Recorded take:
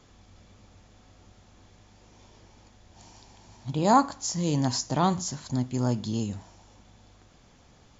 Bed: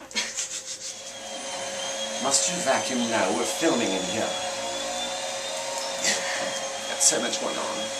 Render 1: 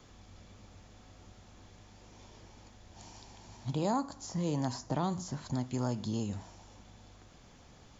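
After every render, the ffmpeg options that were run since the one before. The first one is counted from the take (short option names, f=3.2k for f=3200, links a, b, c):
-filter_complex "[0:a]acrossover=split=540|1500|4000[a][b][c][d];[a]acompressor=threshold=-32dB:ratio=4[e];[b]acompressor=threshold=-37dB:ratio=4[f];[c]acompressor=threshold=-55dB:ratio=4[g];[d]acompressor=threshold=-50dB:ratio=4[h];[e][f][g][h]amix=inputs=4:normalize=0"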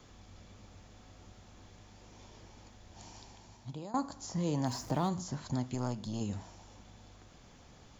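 -filter_complex "[0:a]asettb=1/sr,asplit=3[a][b][c];[a]atrim=end=4.664[d];[b]atrim=start=4.66:end=5.09,asetpts=PTS-STARTPTS,afade=t=in:d=0.004:c=qsin,afade=t=out:st=0.426:d=0.004:c=qsin,aeval=exprs='val(0)+0.5*0.00473*sgn(val(0))':c=same[e];[c]atrim=start=5.086[f];[d][e]acrossfade=d=0.004:c1=hsin:c2=qsin[g];[g][f]acrossfade=d=0.004:c1=qsin:c2=hsin,asettb=1/sr,asplit=3[h][i][j];[h]atrim=end=5.744[k];[i]atrim=start=5.74:end=6.21,asetpts=PTS-STARTPTS,afade=t=in:d=0.004:c=qsin,afade=t=out:st=0.466:d=0.004:c=qsin,aeval=exprs='(tanh(15.8*val(0)+0.65)-tanh(0.65))/15.8':c=same[l];[j]atrim=start=6.206[m];[k][l]acrossfade=d=0.004:c1=hsin:c2=qsin[n];[n][m]acrossfade=d=0.004:c1=qsin:c2=hsin,asplit=2[o][p];[o]atrim=end=3.94,asetpts=PTS-STARTPTS,afade=t=out:st=3.22:d=0.72:silence=0.112202[q];[p]atrim=start=3.94,asetpts=PTS-STARTPTS,afade=t=in:d=0.004:c=hsin:silence=0.112202[r];[q][r]concat=n=2:v=0:a=1"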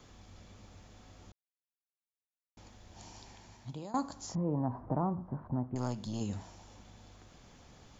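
-filter_complex "[0:a]asettb=1/sr,asplit=3[a][b][c];[a]atrim=end=3.264[d];[b]atrim=start=3.26:end=3.68,asetpts=PTS-STARTPTS,afade=t=in:d=0.004:c=qsin,afade=t=out:st=0.416:d=0.004:c=qsin,equalizer=f=1.9k:t=o:w=0.77:g=4.5[e];[c]atrim=start=3.676[f];[d][e]acrossfade=d=0.004:c1=hsin:c2=qsin[g];[g][f]acrossfade=d=0.004:c1=qsin:c2=hsin,asettb=1/sr,asplit=3[h][i][j];[h]atrim=end=4.354[k];[i]atrim=start=4.35:end=5.76,asetpts=PTS-STARTPTS,afade=t=in:d=0.004:c=qsin,afade=t=out:st=1.406:d=0.004:c=qsin,lowpass=f=1.2k:w=0.5412,lowpass=f=1.2k:w=1.3066[l];[j]atrim=start=5.756[m];[k][l]acrossfade=d=0.004:c1=hsin:c2=qsin[n];[n][m]acrossfade=d=0.004:c1=qsin:c2=hsin,asplit=3[o][p][q];[o]atrim=end=1.32,asetpts=PTS-STARTPTS,afade=t=out:st=1.316:d=0.004:c=hsin[r];[p]atrim=start=1.32:end=2.57,asetpts=PTS-STARTPTS,volume=0[s];[q]atrim=start=2.57,asetpts=PTS-STARTPTS,afade=t=in:d=0.004:c=hsin[t];[r][s][t]concat=n=3:v=0:a=1"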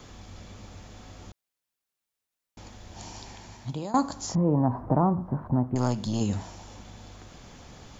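-af "volume=9.5dB"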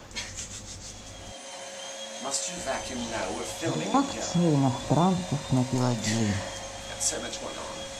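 -filter_complex "[1:a]volume=-8dB[a];[0:a][a]amix=inputs=2:normalize=0"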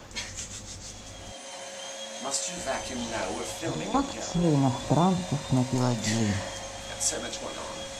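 -filter_complex "[0:a]asettb=1/sr,asplit=3[a][b][c];[a]atrim=end=3.594[d];[b]atrim=start=3.59:end=4.44,asetpts=PTS-STARTPTS,afade=t=in:d=0.004:c=qsin,afade=t=out:st=0.846:d=0.004:c=qsin,tremolo=f=220:d=0.519[e];[c]atrim=start=4.436[f];[d][e]acrossfade=d=0.004:c1=hsin:c2=qsin[g];[g][f]acrossfade=d=0.004:c1=qsin:c2=hsin"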